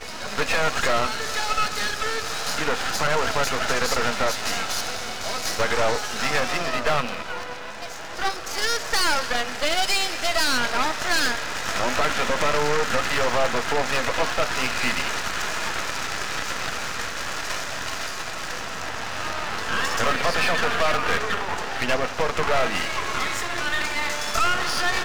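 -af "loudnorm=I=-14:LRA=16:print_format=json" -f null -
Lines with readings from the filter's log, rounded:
"input_i" : "-24.1",
"input_tp" : "-10.7",
"input_lra" : "4.7",
"input_thresh" : "-34.1",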